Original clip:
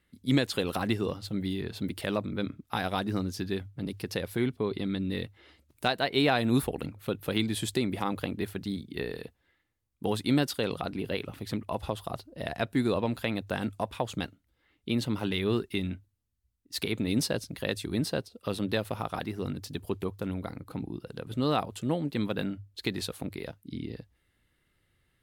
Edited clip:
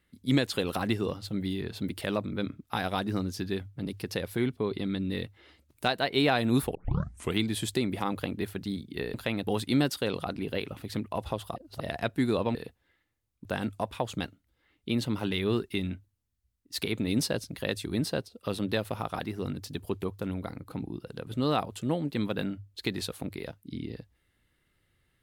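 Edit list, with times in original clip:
6.75 s: tape start 0.64 s
9.14–10.04 s: swap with 13.12–13.45 s
12.13–12.38 s: reverse

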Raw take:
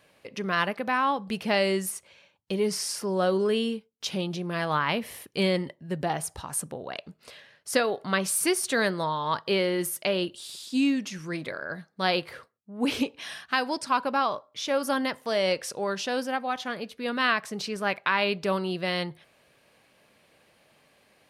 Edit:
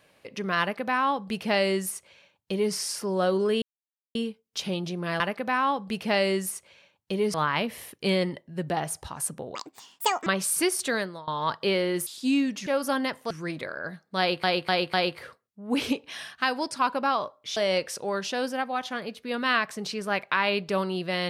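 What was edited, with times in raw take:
0.60–2.74 s: copy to 4.67 s
3.62 s: insert silence 0.53 s
6.88–8.11 s: speed 172%
8.66–9.12 s: fade out linear, to -22 dB
9.91–10.56 s: delete
12.04–12.29 s: loop, 4 plays
14.67–15.31 s: move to 11.16 s

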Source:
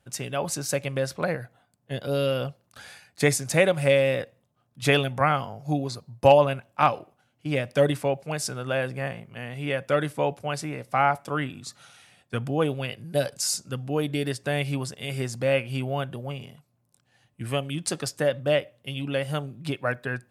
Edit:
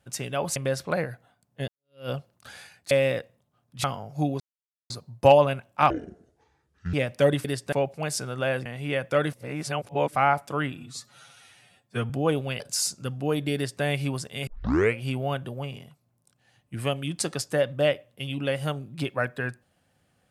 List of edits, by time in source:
0.56–0.87 s: delete
1.99–2.40 s: fade in exponential
3.22–3.94 s: delete
4.87–5.34 s: delete
5.90 s: insert silence 0.50 s
6.90–7.50 s: speed 58%
8.94–9.43 s: delete
10.10–10.93 s: reverse
11.54–12.43 s: stretch 1.5×
12.93–13.27 s: delete
14.22–14.50 s: copy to 8.01 s
15.14 s: tape start 0.49 s

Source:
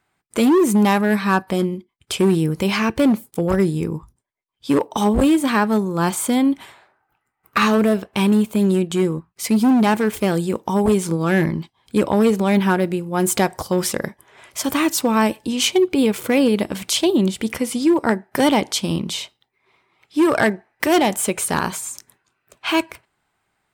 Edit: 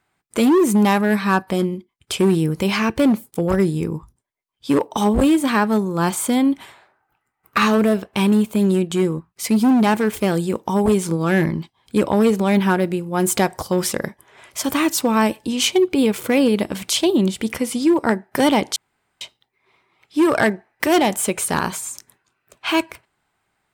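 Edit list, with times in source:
18.76–19.21 s: room tone

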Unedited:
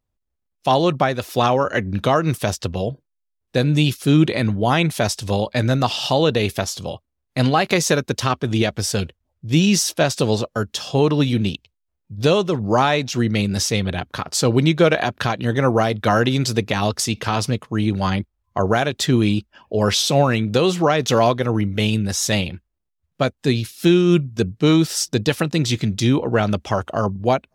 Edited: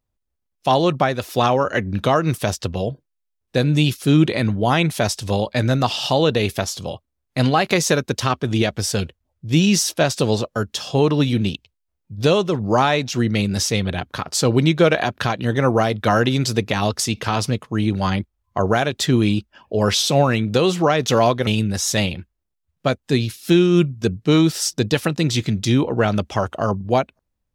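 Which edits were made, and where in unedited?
21.47–21.82 s: delete

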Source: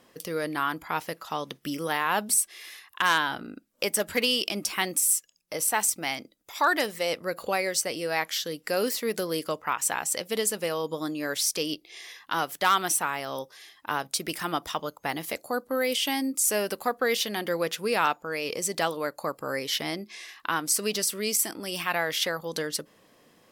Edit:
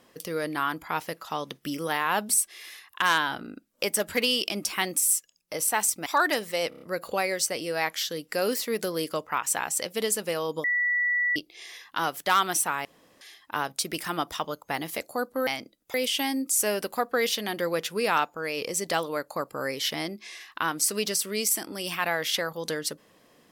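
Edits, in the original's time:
6.06–6.53 s: move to 15.82 s
7.16 s: stutter 0.03 s, 5 plays
10.99–11.71 s: bleep 1.95 kHz -22 dBFS
13.20–13.56 s: room tone

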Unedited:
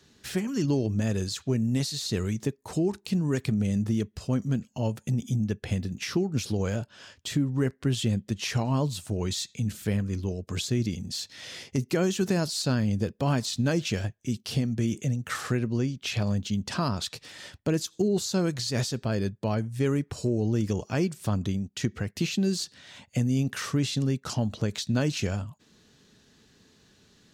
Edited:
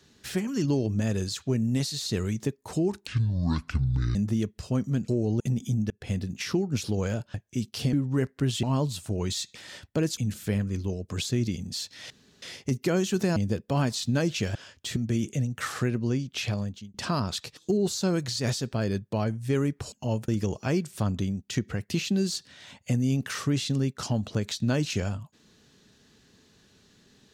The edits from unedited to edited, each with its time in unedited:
3.07–3.73 s: speed 61%
4.66–5.02 s: swap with 20.23–20.55 s
5.52–5.77 s: fade in
6.96–7.37 s: swap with 14.06–14.65 s
8.07–8.64 s: delete
11.49 s: insert room tone 0.32 s
12.43–12.87 s: delete
16.12–16.63 s: fade out
17.26–17.88 s: move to 9.56 s

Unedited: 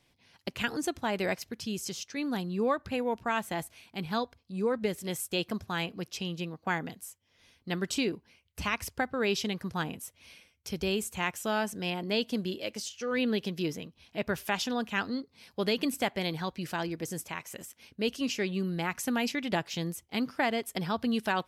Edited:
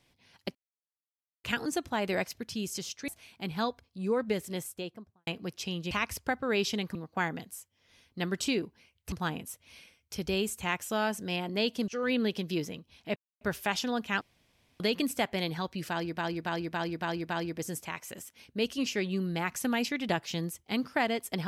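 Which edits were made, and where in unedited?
0.55 s: insert silence 0.89 s
2.19–3.62 s: delete
4.93–5.81 s: studio fade out
8.62–9.66 s: move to 6.45 s
12.42–12.96 s: delete
14.24 s: insert silence 0.25 s
15.04–15.63 s: room tone
16.73–17.01 s: loop, 6 plays

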